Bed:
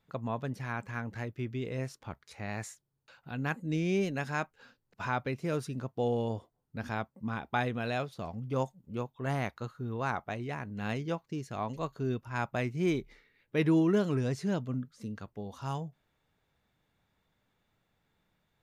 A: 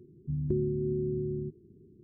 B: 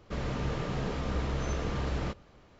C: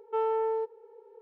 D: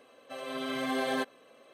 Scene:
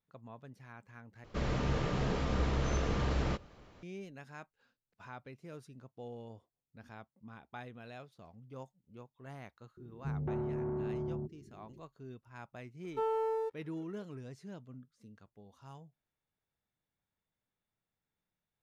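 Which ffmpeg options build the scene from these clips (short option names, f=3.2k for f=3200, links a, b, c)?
-filter_complex "[0:a]volume=-16dB[a];[1:a]asoftclip=type=tanh:threshold=-31.5dB[b];[3:a]aeval=exprs='sgn(val(0))*max(abs(val(0))-0.00211,0)':c=same[c];[a]asplit=2[d][e];[d]atrim=end=1.244[f];[2:a]atrim=end=2.59[g];[e]atrim=start=3.826[h];[b]atrim=end=2.03,asetpts=PTS-STARTPTS,volume=-1dB,afade=t=in:d=0.004:c=hsin,afade=t=out:st=2.026:d=0.004:c=hsin,adelay=9770[i];[c]atrim=end=1.21,asetpts=PTS-STARTPTS,volume=-4.5dB,afade=t=in:d=0.004:c=hsin,afade=t=out:st=1.206:d=0.004:c=hsin,adelay=566244S[j];[f][g]acrossfade=d=0.004:c1=hsin:c2=hsin[k];[k][h]acrossfade=d=0.004:c1=hsin:c2=hsin[l];[l][i][j]amix=inputs=3:normalize=0"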